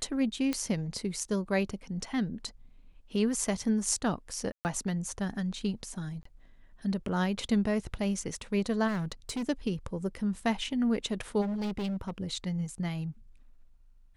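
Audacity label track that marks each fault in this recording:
0.530000	0.530000	pop -16 dBFS
4.520000	4.650000	dropout 129 ms
6.230000	6.250000	dropout 24 ms
8.870000	9.430000	clipped -29 dBFS
11.410000	12.200000	clipped -30 dBFS

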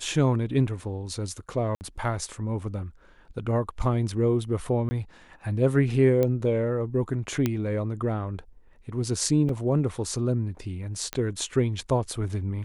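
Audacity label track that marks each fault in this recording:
1.750000	1.810000	dropout 59 ms
4.890000	4.910000	dropout 20 ms
6.230000	6.230000	pop -13 dBFS
7.460000	7.460000	pop -11 dBFS
9.490000	9.490000	dropout 2.5 ms
11.130000	11.130000	pop -13 dBFS

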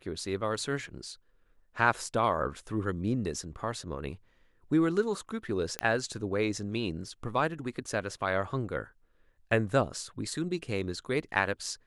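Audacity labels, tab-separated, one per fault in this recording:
5.790000	5.790000	pop -14 dBFS

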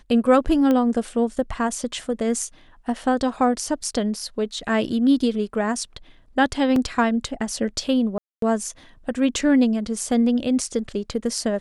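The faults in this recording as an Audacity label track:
0.710000	0.710000	pop -11 dBFS
6.760000	6.760000	dropout 2.7 ms
8.180000	8.420000	dropout 243 ms

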